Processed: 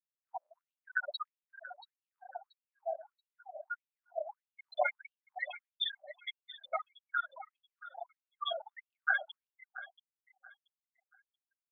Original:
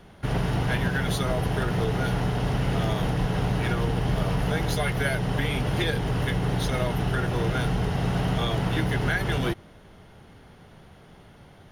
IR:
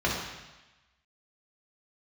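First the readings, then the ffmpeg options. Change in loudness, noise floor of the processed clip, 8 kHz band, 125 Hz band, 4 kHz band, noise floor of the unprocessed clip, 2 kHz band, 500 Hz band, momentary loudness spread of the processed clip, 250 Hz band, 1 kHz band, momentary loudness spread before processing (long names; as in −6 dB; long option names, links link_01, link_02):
−13.5 dB, below −85 dBFS, below −40 dB, below −40 dB, −9.0 dB, −51 dBFS, −7.5 dB, −13.5 dB, 19 LU, below −40 dB, −10.0 dB, 1 LU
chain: -af "highshelf=frequency=7600:gain=-10,bandreject=frequency=1700:width=11,aresample=22050,aresample=44100,aeval=exprs='max(val(0),0)':channel_layout=same,aemphasis=mode=production:type=50fm,afftfilt=real='re*gte(hypot(re,im),0.0891)':imag='im*gte(hypot(re,im),0.0891)':win_size=1024:overlap=0.75,aecho=1:1:681|1362|2043:0.158|0.0428|0.0116,afftfilt=real='re*gte(b*sr/1024,520*pow(2800/520,0.5+0.5*sin(2*PI*1.6*pts/sr)))':imag='im*gte(b*sr/1024,520*pow(2800/520,0.5+0.5*sin(2*PI*1.6*pts/sr)))':win_size=1024:overlap=0.75,volume=7dB"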